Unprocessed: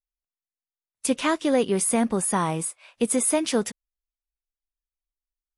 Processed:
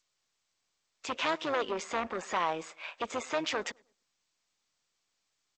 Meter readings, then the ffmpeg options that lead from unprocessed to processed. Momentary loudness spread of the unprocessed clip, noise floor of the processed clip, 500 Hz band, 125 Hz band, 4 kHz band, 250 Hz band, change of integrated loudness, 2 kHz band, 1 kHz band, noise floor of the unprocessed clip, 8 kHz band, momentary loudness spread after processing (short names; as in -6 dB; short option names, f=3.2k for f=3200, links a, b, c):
8 LU, -81 dBFS, -9.5 dB, -19.5 dB, -3.5 dB, -17.0 dB, -10.0 dB, -2.5 dB, -3.5 dB, under -85 dBFS, -19.5 dB, 8 LU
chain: -filter_complex "[0:a]acrossover=split=3500[a][b];[a]aeval=exprs='0.299*sin(PI/2*2.51*val(0)/0.299)':c=same[c];[c][b]amix=inputs=2:normalize=0,alimiter=limit=-20.5dB:level=0:latency=1:release=214,highpass=530,asplit=2[d][e];[e]adelay=103,lowpass=f=930:p=1,volume=-23dB,asplit=2[f][g];[g]adelay=103,lowpass=f=930:p=1,volume=0.39,asplit=2[h][i];[i]adelay=103,lowpass=f=930:p=1,volume=0.39[j];[f][h][j]amix=inputs=3:normalize=0[k];[d][k]amix=inputs=2:normalize=0,tremolo=f=160:d=0.462" -ar 16000 -c:a g722